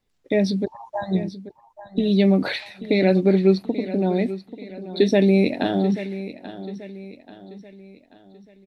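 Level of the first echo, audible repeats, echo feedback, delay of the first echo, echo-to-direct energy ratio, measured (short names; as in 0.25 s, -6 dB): -14.0 dB, 3, 44%, 0.835 s, -13.0 dB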